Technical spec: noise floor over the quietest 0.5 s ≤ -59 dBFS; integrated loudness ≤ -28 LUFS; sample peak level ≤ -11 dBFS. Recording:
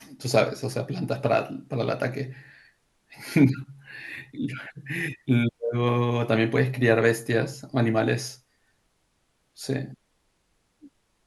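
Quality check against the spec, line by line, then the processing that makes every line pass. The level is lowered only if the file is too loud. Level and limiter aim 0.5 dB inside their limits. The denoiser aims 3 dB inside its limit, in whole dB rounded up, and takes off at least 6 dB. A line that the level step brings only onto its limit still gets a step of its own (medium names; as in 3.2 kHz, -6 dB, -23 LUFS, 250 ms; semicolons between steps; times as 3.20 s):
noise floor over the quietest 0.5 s -70 dBFS: pass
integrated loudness -25.5 LUFS: fail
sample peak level -6.0 dBFS: fail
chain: trim -3 dB; peak limiter -11.5 dBFS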